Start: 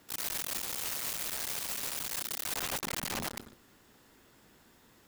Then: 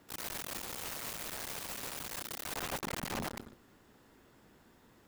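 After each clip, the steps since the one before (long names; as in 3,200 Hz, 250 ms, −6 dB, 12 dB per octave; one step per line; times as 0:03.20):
high-shelf EQ 2,100 Hz −8 dB
level +1 dB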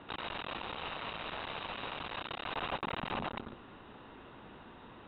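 downward compressor, threshold −45 dBFS, peak gain reduction 11 dB
Chebyshev low-pass with heavy ripple 3,900 Hz, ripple 6 dB
level +14.5 dB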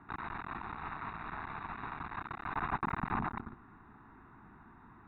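high-frequency loss of the air 290 metres
phaser with its sweep stopped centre 1,300 Hz, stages 4
expander for the loud parts 1.5 to 1, over −55 dBFS
level +8 dB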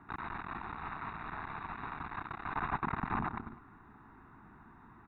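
repeating echo 101 ms, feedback 49%, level −17 dB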